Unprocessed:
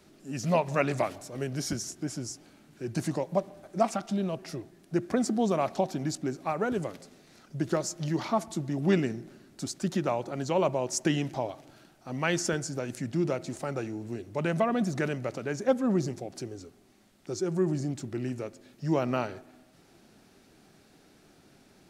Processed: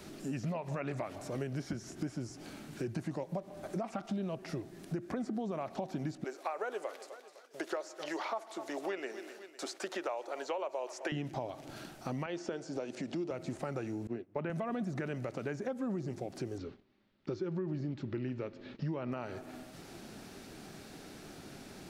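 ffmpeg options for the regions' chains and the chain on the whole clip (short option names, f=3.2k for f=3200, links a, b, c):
-filter_complex "[0:a]asettb=1/sr,asplit=3[a][b][c];[a]atrim=end=6.244[d];[b]atrim=start=6.24:end=11.12,asetpts=PTS-STARTPTS,afade=t=in:d=0.004:c=qsin,afade=t=out:st=4.876:d=0.004:c=qsin,agate=range=-33dB:threshold=-47dB:ratio=3:release=100:detection=peak,highpass=f=440:w=0.5412,highpass=f=440:w=1.3066,aecho=1:1:254|508|762:0.0841|0.0294|0.0103,atrim=end_sample=215208[e];[c]atrim=start=11.116[f];[d][e]acrossfade=d=0.004:c1=hsin:c2=qsin[g];[g][f]acrossfade=d=0.004:c1=qsin:c2=hsin,asettb=1/sr,asplit=3[h][i][j];[h]atrim=end=12.264[k];[i]atrim=start=12.26:end=13.31,asetpts=PTS-STARTPTS,afade=t=in:d=0.004:c=qsin,afade=t=out:st=1.046:d=0.004:c=qsin,highpass=330,lowpass=5.2k,equalizer=f=1.7k:w=1.1:g=-8.5,acompressor=mode=upward:threshold=-36dB:ratio=2.5:attack=3.2:release=140:knee=2.83:detection=peak[l];[j]atrim=start=13.306[m];[k][l]acrossfade=d=0.004:c1=hsin:c2=qsin[n];[n][m]acrossfade=d=0.004:c1=qsin:c2=hsin,asettb=1/sr,asplit=3[o][p][q];[o]atrim=end=14.074[r];[p]atrim=start=14.07:end=14.5,asetpts=PTS-STARTPTS,afade=t=in:d=0.004:c=qsin,afade=t=out:st=0.426:d=0.004:c=qsin,agate=range=-33dB:threshold=-35dB:ratio=3:release=100:detection=peak,highpass=150,lowpass=2.3k[s];[q]atrim=start=14.496[t];[r][s]acrossfade=d=0.004:c1=hsin:c2=qsin[u];[u][t]acrossfade=d=0.004:c1=qsin:c2=hsin,asettb=1/sr,asplit=3[v][w][x];[v]atrim=end=16.584[y];[w]atrim=start=16.58:end=19.12,asetpts=PTS-STARTPTS,afade=t=in:d=0.004:c=qsin,afade=t=out:st=2.536:d=0.004:c=qsin,lowpass=f=4.1k:w=0.5412,lowpass=f=4.1k:w=1.3066,bandreject=f=720:w=6.4,agate=range=-19dB:threshold=-59dB:ratio=16:release=100:detection=peak[z];[x]atrim=start=19.116[aa];[y][z]acrossfade=d=0.004:c1=hsin:c2=qsin[ab];[ab][aa]acrossfade=d=0.004:c1=qsin:c2=hsin,acrossover=split=3100[ac][ad];[ad]acompressor=threshold=-54dB:ratio=4:attack=1:release=60[ae];[ac][ae]amix=inputs=2:normalize=0,alimiter=limit=-21.5dB:level=0:latency=1:release=140,acompressor=threshold=-46dB:ratio=4,volume=9dB"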